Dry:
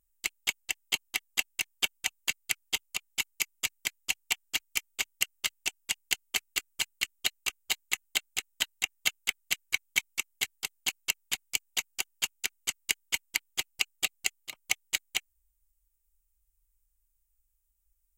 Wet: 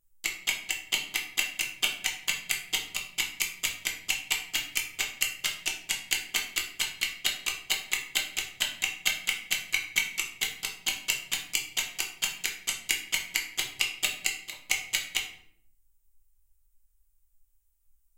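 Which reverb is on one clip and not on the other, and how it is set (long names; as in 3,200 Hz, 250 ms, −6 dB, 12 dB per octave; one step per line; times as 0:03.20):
rectangular room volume 100 cubic metres, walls mixed, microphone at 0.78 metres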